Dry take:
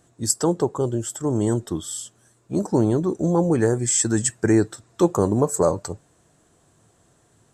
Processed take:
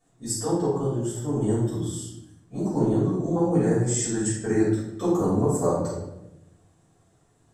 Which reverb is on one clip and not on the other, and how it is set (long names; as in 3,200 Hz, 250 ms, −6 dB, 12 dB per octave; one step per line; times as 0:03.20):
rectangular room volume 300 cubic metres, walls mixed, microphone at 5.8 metres
level −18.5 dB